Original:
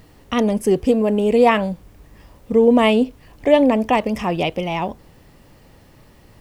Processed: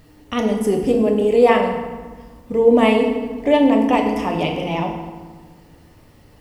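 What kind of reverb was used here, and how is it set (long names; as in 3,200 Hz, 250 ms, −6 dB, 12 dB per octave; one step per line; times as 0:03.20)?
feedback delay network reverb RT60 1.4 s, low-frequency decay 1.4×, high-frequency decay 0.7×, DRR 1.5 dB
level −3 dB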